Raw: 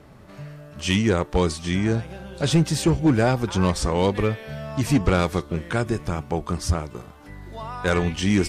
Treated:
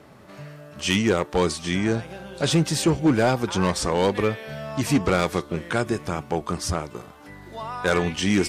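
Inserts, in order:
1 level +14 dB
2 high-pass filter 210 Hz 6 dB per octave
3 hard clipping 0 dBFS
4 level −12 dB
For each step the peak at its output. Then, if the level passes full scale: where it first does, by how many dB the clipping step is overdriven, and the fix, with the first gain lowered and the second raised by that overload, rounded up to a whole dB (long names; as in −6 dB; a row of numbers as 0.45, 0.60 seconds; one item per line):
+3.0, +6.5, 0.0, −12.0 dBFS
step 1, 6.5 dB
step 1 +7 dB, step 4 −5 dB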